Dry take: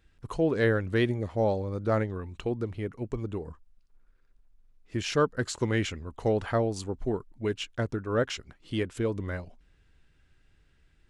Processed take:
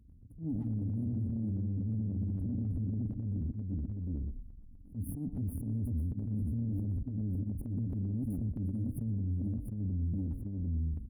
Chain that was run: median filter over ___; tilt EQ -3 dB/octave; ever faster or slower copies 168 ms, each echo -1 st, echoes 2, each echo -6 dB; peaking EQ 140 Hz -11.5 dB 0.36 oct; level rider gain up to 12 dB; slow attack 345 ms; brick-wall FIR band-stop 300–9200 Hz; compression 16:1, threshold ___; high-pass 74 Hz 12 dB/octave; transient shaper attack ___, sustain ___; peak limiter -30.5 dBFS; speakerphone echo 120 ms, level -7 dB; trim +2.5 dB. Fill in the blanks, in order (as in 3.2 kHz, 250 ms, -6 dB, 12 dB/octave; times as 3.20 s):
9 samples, -28 dBFS, -8 dB, +9 dB